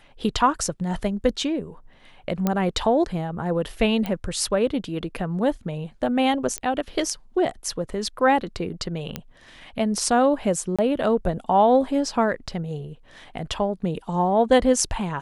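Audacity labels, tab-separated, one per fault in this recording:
2.470000	2.470000	click −9 dBFS
4.060000	4.060000	click −14 dBFS
6.580000	6.580000	click −12 dBFS
9.160000	9.160000	click −13 dBFS
10.760000	10.790000	drop-out 26 ms

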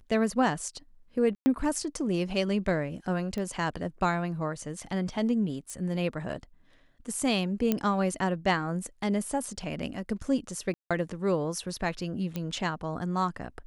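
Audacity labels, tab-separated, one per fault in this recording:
1.350000	1.460000	drop-out 110 ms
3.380000	3.380000	click −23 dBFS
5.700000	5.700000	click −26 dBFS
7.720000	7.720000	click −12 dBFS
10.740000	10.910000	drop-out 166 ms
12.360000	12.360000	click −19 dBFS

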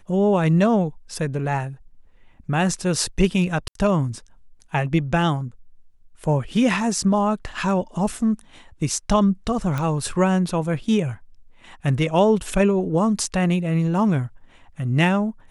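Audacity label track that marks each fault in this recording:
3.680000	3.750000	drop-out 73 ms
9.780000	9.780000	click −13 dBFS

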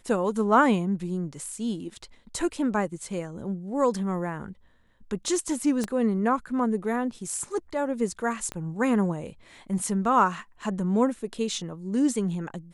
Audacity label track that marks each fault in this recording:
5.840000	5.840000	click −16 dBFS
8.520000	8.520000	click −19 dBFS

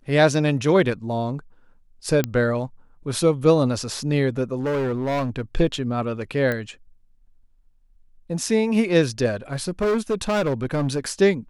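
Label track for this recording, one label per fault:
2.240000	2.240000	click −8 dBFS
4.600000	5.420000	clipping −20.5 dBFS
6.520000	6.520000	click −13 dBFS
9.530000	11.100000	clipping −18 dBFS

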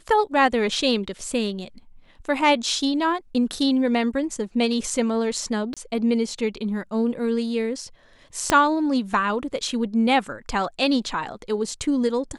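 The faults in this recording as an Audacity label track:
5.740000	5.770000	drop-out 26 ms
8.500000	8.500000	click −4 dBFS

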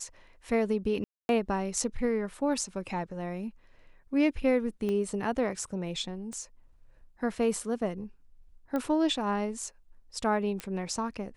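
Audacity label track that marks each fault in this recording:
1.040000	1.290000	drop-out 251 ms
4.890000	4.890000	click −22 dBFS
6.330000	6.330000	click −29 dBFS
8.760000	8.760000	click −20 dBFS
10.600000	10.600000	click −20 dBFS

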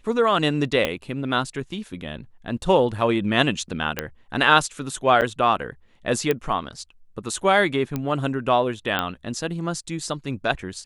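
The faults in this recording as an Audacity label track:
0.850000	0.850000	click −8 dBFS
3.990000	3.990000	click −8 dBFS
5.210000	5.220000	drop-out 8.4 ms
6.310000	6.310000	click −9 dBFS
7.960000	7.960000	click −13 dBFS
8.990000	8.990000	click −9 dBFS

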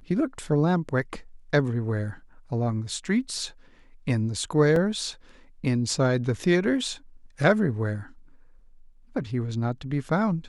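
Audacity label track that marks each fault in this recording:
4.760000	4.760000	drop-out 2.4 ms

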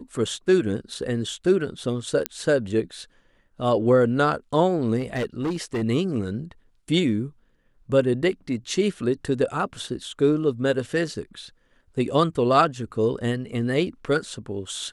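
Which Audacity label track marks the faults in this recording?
2.260000	2.260000	click −7 dBFS
4.990000	5.830000	clipping −22 dBFS

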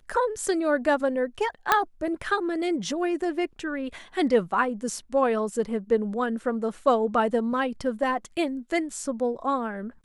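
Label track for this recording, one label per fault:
1.720000	1.720000	click −5 dBFS

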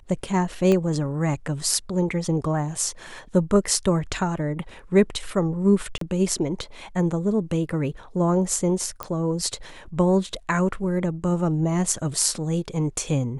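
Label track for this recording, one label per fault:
0.720000	0.720000	click −11 dBFS
5.980000	6.010000	drop-out 33 ms
9.030000	9.030000	click −12 dBFS

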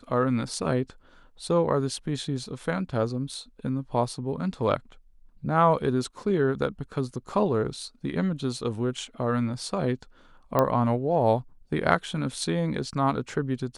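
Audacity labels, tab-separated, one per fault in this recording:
10.590000	10.590000	click −10 dBFS

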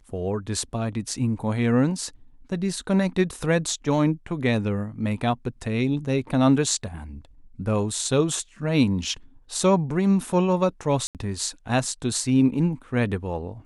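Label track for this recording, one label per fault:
11.070000	11.150000	drop-out 78 ms

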